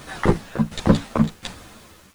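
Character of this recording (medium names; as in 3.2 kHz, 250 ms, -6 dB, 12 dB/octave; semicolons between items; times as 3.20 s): tremolo saw down 1.4 Hz, depth 85%; a quantiser's noise floor 10-bit, dither none; a shimmering, thickened sound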